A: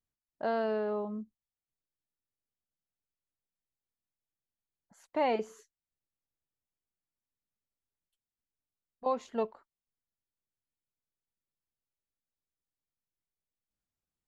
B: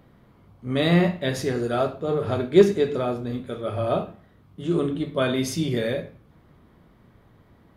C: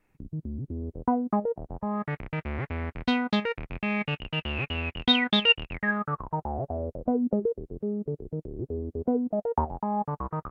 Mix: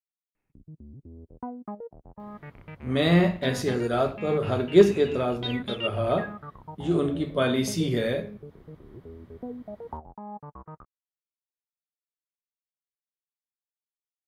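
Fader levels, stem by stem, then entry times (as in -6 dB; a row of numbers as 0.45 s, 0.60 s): mute, -1.0 dB, -11.5 dB; mute, 2.20 s, 0.35 s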